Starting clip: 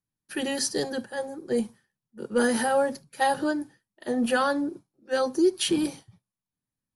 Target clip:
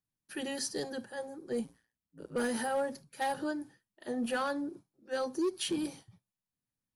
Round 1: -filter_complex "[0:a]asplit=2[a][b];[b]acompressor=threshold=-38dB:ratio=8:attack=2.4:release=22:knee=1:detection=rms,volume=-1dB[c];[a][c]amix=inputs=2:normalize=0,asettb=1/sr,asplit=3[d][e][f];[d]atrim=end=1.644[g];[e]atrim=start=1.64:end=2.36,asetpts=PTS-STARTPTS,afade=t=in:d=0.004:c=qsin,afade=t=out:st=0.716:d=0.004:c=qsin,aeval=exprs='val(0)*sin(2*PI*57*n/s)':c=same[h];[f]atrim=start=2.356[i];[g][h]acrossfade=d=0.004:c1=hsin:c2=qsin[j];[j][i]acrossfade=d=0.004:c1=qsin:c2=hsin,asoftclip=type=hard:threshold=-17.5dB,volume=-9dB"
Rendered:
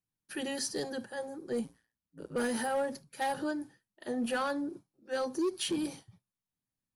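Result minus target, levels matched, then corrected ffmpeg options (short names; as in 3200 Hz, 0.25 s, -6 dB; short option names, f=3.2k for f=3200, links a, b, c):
compressor: peak gain reduction -9.5 dB
-filter_complex "[0:a]asplit=2[a][b];[b]acompressor=threshold=-49dB:ratio=8:attack=2.4:release=22:knee=1:detection=rms,volume=-1dB[c];[a][c]amix=inputs=2:normalize=0,asettb=1/sr,asplit=3[d][e][f];[d]atrim=end=1.644[g];[e]atrim=start=1.64:end=2.36,asetpts=PTS-STARTPTS,afade=t=in:d=0.004:c=qsin,afade=t=out:st=0.716:d=0.004:c=qsin,aeval=exprs='val(0)*sin(2*PI*57*n/s)':c=same[h];[f]atrim=start=2.356[i];[g][h]acrossfade=d=0.004:c1=hsin:c2=qsin[j];[j][i]acrossfade=d=0.004:c1=qsin:c2=hsin,asoftclip=type=hard:threshold=-17.5dB,volume=-9dB"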